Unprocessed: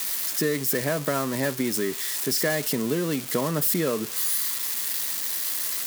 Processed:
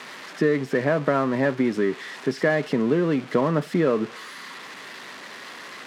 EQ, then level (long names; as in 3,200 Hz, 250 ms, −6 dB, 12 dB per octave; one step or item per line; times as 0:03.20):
band-pass filter 130–2,000 Hz
+5.0 dB